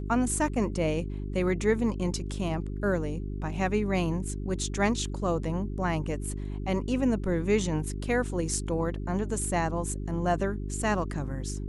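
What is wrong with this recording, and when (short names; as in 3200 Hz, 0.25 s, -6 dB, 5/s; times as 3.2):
hum 50 Hz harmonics 8 -34 dBFS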